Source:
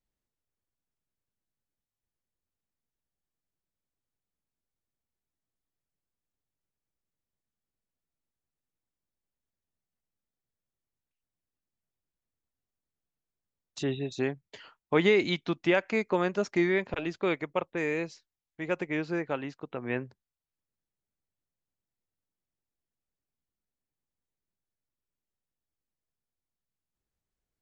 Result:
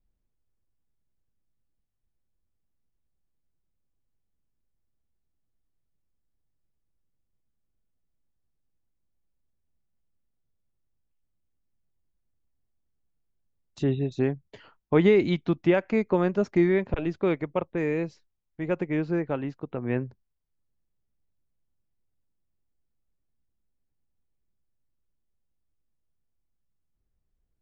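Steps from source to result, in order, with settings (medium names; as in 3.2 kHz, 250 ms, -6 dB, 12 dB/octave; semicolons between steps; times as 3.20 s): tilt EQ -3 dB/octave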